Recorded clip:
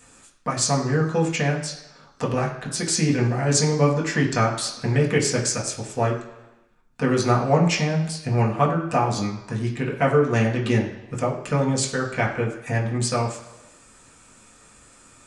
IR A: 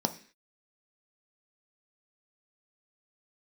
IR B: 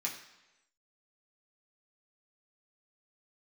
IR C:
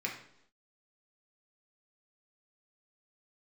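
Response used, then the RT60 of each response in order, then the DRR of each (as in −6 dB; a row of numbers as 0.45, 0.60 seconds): B; 0.45, 1.0, 0.75 seconds; 6.5, −3.5, −1.5 decibels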